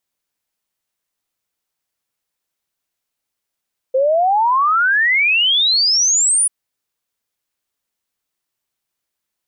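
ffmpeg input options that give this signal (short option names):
-f lavfi -i "aevalsrc='0.266*clip(min(t,2.54-t)/0.01,0,1)*sin(2*PI*510*2.54/log(10000/510)*(exp(log(10000/510)*t/2.54)-1))':d=2.54:s=44100"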